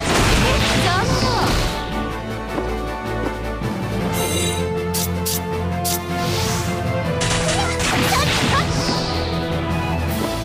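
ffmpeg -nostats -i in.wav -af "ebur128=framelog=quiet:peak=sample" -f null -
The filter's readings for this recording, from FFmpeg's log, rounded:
Integrated loudness:
  I:         -19.8 LUFS
  Threshold: -29.8 LUFS
Loudness range:
  LRA:         3.8 LU
  Threshold: -40.4 LUFS
  LRA low:   -22.5 LUFS
  LRA high:  -18.8 LUFS
Sample peak:
  Peak:       -9.4 dBFS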